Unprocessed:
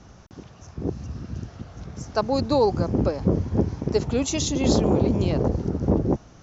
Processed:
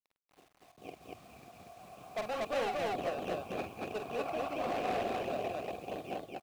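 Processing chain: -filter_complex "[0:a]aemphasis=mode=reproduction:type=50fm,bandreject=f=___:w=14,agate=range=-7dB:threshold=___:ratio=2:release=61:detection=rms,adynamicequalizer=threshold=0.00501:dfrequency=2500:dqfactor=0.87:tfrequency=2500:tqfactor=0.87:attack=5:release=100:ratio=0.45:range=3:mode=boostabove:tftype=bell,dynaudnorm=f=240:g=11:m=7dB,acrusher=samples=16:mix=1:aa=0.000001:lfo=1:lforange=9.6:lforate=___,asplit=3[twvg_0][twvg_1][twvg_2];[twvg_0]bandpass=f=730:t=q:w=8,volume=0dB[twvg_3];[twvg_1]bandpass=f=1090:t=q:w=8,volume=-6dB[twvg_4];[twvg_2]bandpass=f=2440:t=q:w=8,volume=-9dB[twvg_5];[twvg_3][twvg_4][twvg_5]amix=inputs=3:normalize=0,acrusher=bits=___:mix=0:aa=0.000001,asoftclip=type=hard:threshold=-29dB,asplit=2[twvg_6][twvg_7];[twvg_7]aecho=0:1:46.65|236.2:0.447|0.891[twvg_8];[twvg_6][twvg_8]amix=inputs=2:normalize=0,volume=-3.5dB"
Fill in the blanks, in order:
1300, -40dB, 2.3, 9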